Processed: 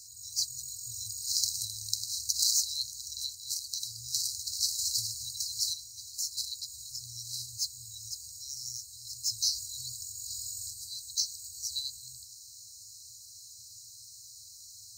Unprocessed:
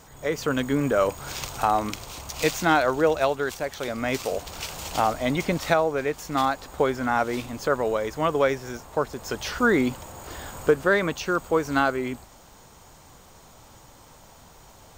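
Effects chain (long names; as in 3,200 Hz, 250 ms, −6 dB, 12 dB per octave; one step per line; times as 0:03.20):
meter weighting curve A
brick-wall band-stop 120–3,900 Hz
level +8 dB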